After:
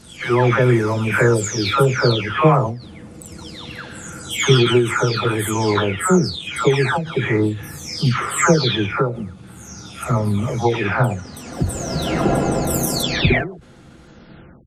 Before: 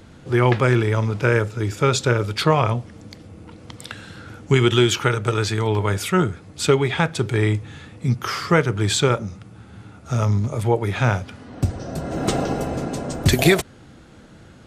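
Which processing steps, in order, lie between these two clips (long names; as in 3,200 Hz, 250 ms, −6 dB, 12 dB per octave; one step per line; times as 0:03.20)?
every frequency bin delayed by itself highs early, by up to 584 ms
automatic gain control gain up to 5 dB
every ending faded ahead of time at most 110 dB per second
level +1.5 dB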